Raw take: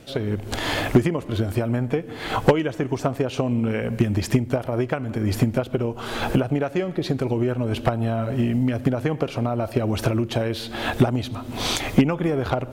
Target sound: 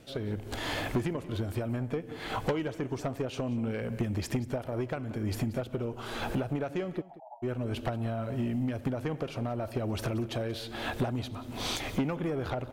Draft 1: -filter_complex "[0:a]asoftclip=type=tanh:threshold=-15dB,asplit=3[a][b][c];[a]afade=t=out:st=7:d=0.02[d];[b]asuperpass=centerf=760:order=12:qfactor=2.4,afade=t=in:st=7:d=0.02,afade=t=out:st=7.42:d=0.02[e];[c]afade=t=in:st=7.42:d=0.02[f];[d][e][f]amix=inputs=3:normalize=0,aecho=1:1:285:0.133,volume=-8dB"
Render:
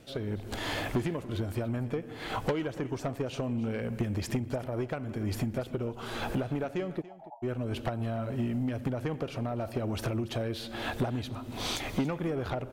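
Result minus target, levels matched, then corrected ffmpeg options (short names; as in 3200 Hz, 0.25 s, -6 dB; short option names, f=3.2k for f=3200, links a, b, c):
echo 0.103 s late
-filter_complex "[0:a]asoftclip=type=tanh:threshold=-15dB,asplit=3[a][b][c];[a]afade=t=out:st=7:d=0.02[d];[b]asuperpass=centerf=760:order=12:qfactor=2.4,afade=t=in:st=7:d=0.02,afade=t=out:st=7.42:d=0.02[e];[c]afade=t=in:st=7.42:d=0.02[f];[d][e][f]amix=inputs=3:normalize=0,aecho=1:1:182:0.133,volume=-8dB"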